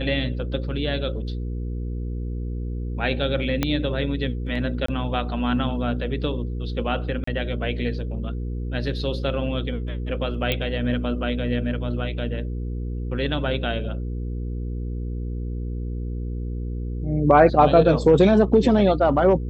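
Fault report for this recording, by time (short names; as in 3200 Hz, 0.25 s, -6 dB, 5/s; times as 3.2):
hum 60 Hz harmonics 8 -28 dBFS
3.63 pop -7 dBFS
4.86–4.88 gap 24 ms
7.24–7.27 gap 34 ms
10.52 pop -9 dBFS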